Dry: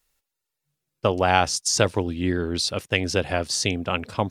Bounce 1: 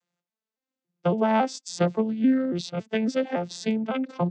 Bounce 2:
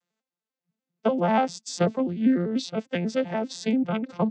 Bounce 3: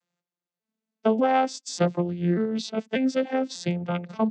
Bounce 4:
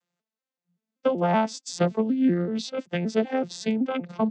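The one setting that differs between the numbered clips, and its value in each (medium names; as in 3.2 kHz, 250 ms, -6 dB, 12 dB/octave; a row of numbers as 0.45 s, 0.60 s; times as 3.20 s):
vocoder on a broken chord, a note every: 279 ms, 98 ms, 590 ms, 190 ms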